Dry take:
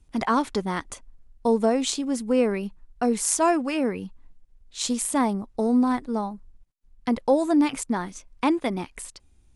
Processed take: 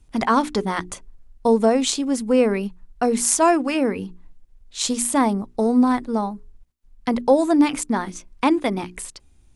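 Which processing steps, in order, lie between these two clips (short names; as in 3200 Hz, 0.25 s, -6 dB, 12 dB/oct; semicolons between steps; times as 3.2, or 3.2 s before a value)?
notches 60/120/180/240/300/360/420 Hz; gain +4.5 dB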